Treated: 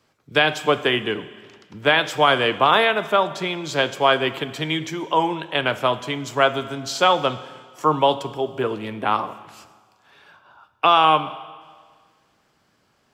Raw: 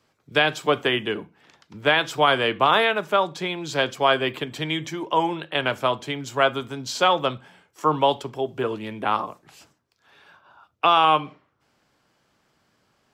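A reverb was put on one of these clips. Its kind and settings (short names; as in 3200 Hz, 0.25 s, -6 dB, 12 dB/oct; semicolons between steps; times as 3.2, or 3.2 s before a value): Schroeder reverb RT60 1.7 s, combs from 25 ms, DRR 14 dB; gain +2 dB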